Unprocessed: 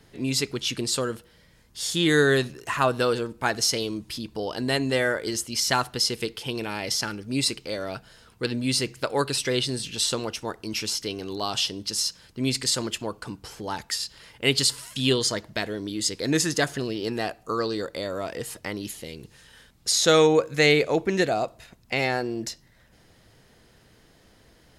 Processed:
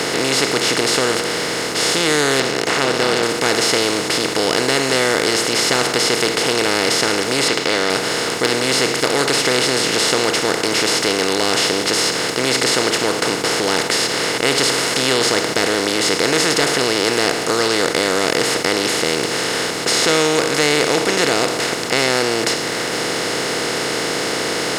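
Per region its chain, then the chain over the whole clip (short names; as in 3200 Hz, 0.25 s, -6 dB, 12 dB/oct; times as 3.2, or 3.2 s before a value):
2.4–3.23 air absorption 160 m + AM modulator 280 Hz, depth 55%
7.48–7.9 LPF 3700 Hz 24 dB/oct + tilt +3.5 dB/oct
whole clip: per-bin compression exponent 0.2; low shelf 100 Hz -6.5 dB; sample leveller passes 1; gain -6.5 dB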